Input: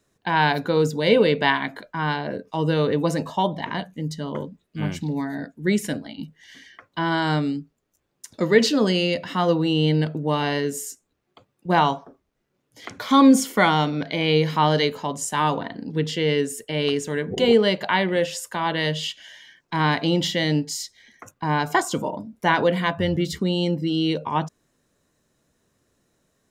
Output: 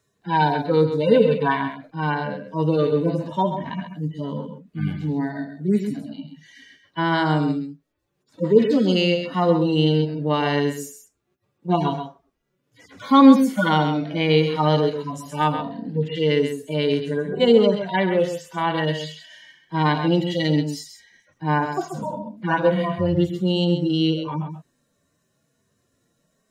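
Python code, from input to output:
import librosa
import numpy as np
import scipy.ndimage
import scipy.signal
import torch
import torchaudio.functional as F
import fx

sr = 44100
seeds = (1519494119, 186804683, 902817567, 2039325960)

y = fx.hpss_only(x, sr, part='harmonic')
y = y + 10.0 ** (-8.5 / 20.0) * np.pad(y, (int(132 * sr / 1000.0), 0))[:len(y)]
y = y * 10.0 ** (2.0 / 20.0)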